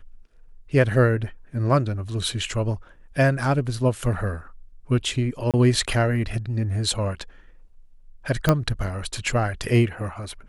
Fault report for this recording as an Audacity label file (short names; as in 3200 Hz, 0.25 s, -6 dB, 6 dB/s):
5.510000	5.540000	gap 27 ms
8.490000	8.490000	pop -5 dBFS